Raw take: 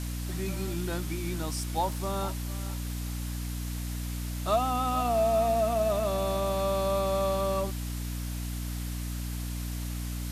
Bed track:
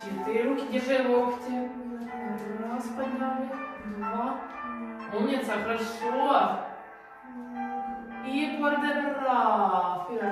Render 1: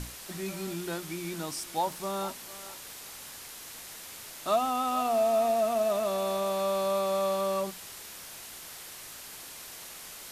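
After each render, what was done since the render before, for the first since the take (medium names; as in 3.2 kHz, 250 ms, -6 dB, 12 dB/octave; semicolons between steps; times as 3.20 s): hum notches 60/120/180/240/300 Hz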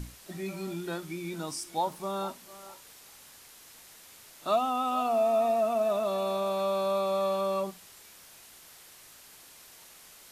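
noise print and reduce 8 dB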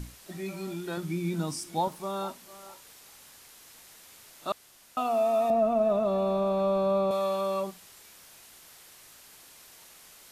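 0.97–1.88 s: peaking EQ 170 Hz +10 dB 1.6 oct; 4.52–4.97 s: room tone; 5.50–7.11 s: tilt EQ -3.5 dB/octave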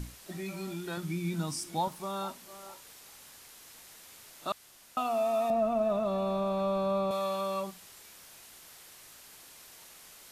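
dynamic bell 420 Hz, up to -6 dB, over -39 dBFS, Q 0.79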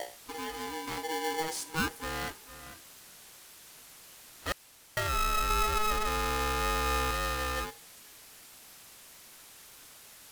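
wow and flutter 22 cents; polarity switched at an audio rate 640 Hz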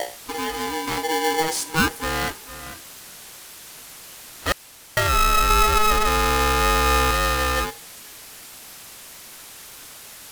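trim +11 dB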